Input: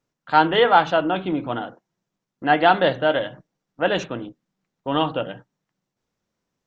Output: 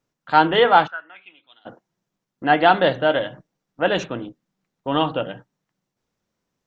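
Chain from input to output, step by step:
0:00.86–0:01.65: resonant band-pass 1,300 Hz → 4,700 Hz, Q 10
level +1 dB

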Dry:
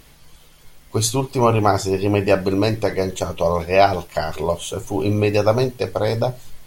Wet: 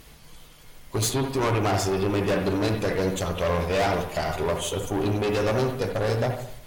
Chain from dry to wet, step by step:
tube saturation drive 22 dB, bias 0.45
on a send: convolution reverb, pre-delay 70 ms, DRR 5 dB
on the sum: level +1 dB

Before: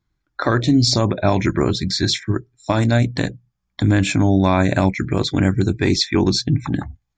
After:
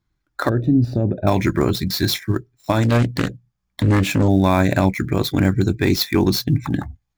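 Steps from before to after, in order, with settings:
gap after every zero crossing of 0.05 ms
0:00.49–0:01.27: moving average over 41 samples
0:02.83–0:04.28: highs frequency-modulated by the lows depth 0.56 ms

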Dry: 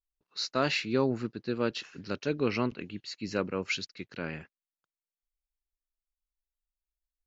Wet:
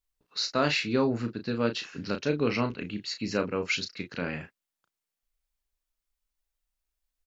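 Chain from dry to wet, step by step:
in parallel at +1 dB: downward compressor, threshold −38 dBFS, peak gain reduction 16 dB
on the sum: notch filter 360 Hz, Q 12
double-tracking delay 34 ms −8 dB

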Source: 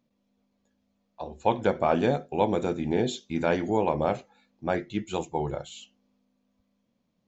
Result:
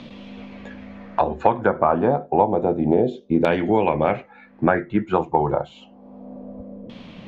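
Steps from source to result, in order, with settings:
auto-filter low-pass saw down 0.29 Hz 480–3,400 Hz
multiband upward and downward compressor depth 100%
level +4.5 dB

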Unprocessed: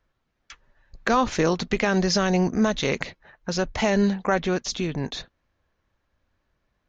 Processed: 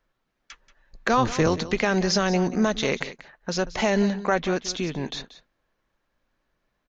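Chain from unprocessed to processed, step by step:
0:01.17–0:01.58: sub-octave generator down 1 octave, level +3 dB
parametric band 77 Hz −14 dB 0.95 octaves
single-tap delay 182 ms −15.5 dB

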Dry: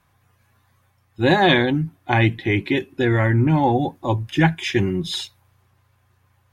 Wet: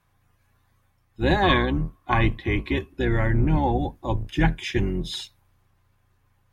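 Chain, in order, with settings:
sub-octave generator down 2 octaves, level 0 dB
0:01.43–0:02.88: hollow resonant body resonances 1,100 Hz, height 18 dB, ringing for 45 ms
level −5.5 dB

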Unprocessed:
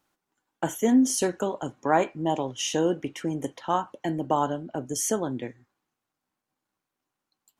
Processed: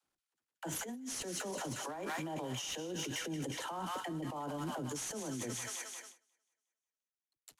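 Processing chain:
variable-slope delta modulation 64 kbit/s
on a send: delay with a high-pass on its return 180 ms, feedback 53%, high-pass 1,700 Hz, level −4.5 dB
on the sum: noise gate with hold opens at −50 dBFS
all-pass dispersion lows, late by 44 ms, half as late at 350 Hz
compressor whose output falls as the input rises −36 dBFS, ratio −1
gain into a clipping stage and back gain 24 dB
brickwall limiter −34 dBFS, peak gain reduction 10 dB
level +1.5 dB

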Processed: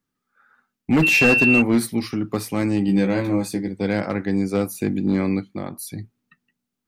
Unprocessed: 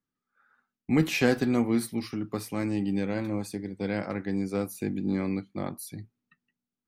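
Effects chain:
0:05.49–0:05.96: downward compressor 3 to 1, threshold −35 dBFS, peak gain reduction 6 dB
hard clipping −19.5 dBFS, distortion −14 dB
0:01.02–0:01.60: steady tone 2,700 Hz −23 dBFS
0:02.87–0:03.68: double-tracking delay 16 ms −4.5 dB
level +8 dB

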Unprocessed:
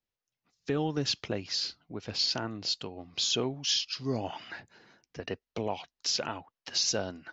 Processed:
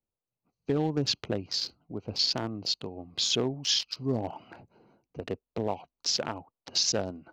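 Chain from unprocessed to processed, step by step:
adaptive Wiener filter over 25 samples
level +3 dB

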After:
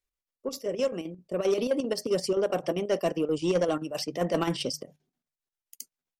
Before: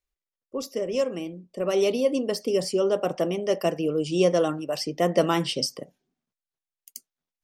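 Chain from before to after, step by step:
mains-hum notches 50/100/150 Hz
tempo change 1.2×
square-wave tremolo 7.6 Hz, depth 60%, duty 70%
soft clipping −16.5 dBFS, distortion −17 dB
MP3 80 kbit/s 48,000 Hz

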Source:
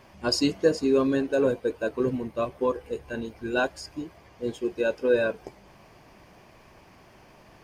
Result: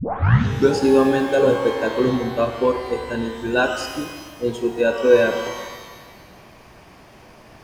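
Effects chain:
turntable start at the beginning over 0.77 s
reverb with rising layers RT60 1.4 s, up +12 semitones, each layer −8 dB, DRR 5.5 dB
level +6 dB

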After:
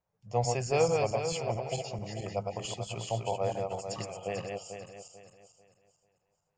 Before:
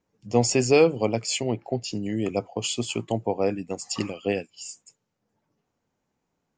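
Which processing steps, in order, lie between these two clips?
feedback delay that plays each chunk backwards 221 ms, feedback 55%, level −3 dB
drawn EQ curve 160 Hz 0 dB, 260 Hz −19 dB, 640 Hz +3 dB, 2,900 Hz −6 dB
level −5.5 dB

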